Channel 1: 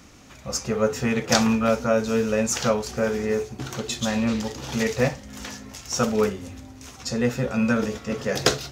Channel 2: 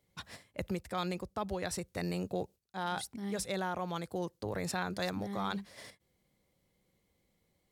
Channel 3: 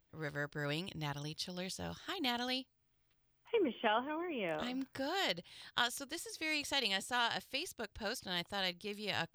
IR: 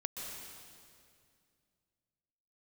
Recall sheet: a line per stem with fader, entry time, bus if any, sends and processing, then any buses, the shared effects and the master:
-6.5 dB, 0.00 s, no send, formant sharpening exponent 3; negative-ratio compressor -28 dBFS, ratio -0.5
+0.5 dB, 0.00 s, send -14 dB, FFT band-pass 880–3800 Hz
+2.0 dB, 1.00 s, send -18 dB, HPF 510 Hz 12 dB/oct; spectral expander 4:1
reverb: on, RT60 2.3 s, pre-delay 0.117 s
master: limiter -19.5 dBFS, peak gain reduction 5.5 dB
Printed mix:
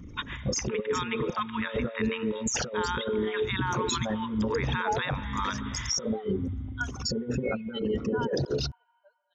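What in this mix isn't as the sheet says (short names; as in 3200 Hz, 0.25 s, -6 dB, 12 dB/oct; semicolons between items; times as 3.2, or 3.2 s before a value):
stem 1 -6.5 dB -> +1.0 dB; stem 2 +0.5 dB -> +12.0 dB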